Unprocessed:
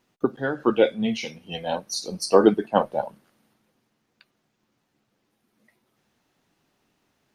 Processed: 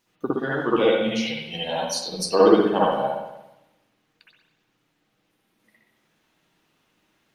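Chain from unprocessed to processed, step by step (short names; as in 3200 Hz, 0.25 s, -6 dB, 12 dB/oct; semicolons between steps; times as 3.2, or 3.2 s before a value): high shelf 2100 Hz +9.5 dB; reverb RT60 0.90 s, pre-delay 58 ms, DRR -7 dB; gain -7 dB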